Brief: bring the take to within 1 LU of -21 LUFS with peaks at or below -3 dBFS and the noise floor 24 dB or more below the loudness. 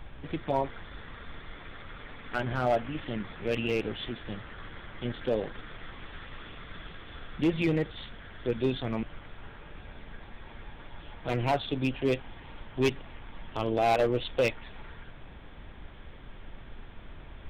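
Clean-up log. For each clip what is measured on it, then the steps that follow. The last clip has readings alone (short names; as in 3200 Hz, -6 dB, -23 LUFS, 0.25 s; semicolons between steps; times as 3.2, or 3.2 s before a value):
clipped 0.5%; flat tops at -19.0 dBFS; noise floor -48 dBFS; noise floor target -55 dBFS; loudness -31.0 LUFS; peak -19.0 dBFS; loudness target -21.0 LUFS
-> clip repair -19 dBFS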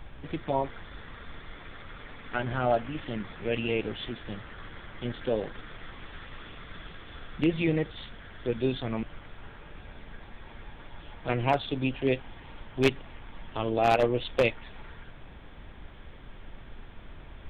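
clipped 0.0%; noise floor -48 dBFS; noise floor target -54 dBFS
-> noise print and reduce 6 dB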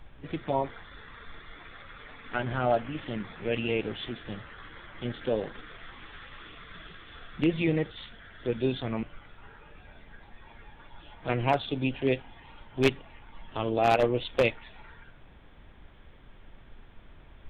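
noise floor -53 dBFS; noise floor target -54 dBFS
-> noise print and reduce 6 dB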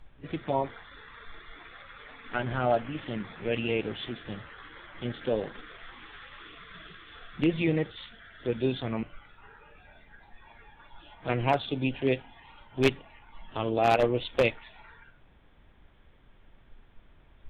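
noise floor -58 dBFS; loudness -30.0 LUFS; peak -10.0 dBFS; loudness target -21.0 LUFS
-> gain +9 dB; limiter -3 dBFS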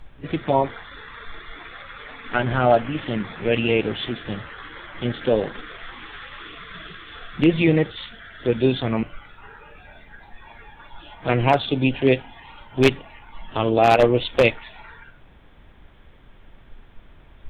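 loudness -21.5 LUFS; peak -3.0 dBFS; noise floor -49 dBFS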